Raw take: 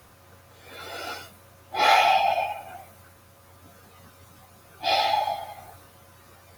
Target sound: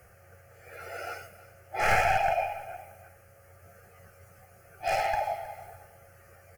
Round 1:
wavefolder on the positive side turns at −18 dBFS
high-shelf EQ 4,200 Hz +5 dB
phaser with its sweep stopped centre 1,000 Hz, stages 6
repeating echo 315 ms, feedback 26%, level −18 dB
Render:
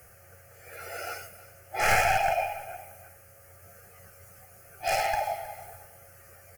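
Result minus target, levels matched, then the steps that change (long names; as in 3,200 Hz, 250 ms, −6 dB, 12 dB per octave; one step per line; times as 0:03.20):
8,000 Hz band +7.0 dB
change: high-shelf EQ 4,200 Hz −5 dB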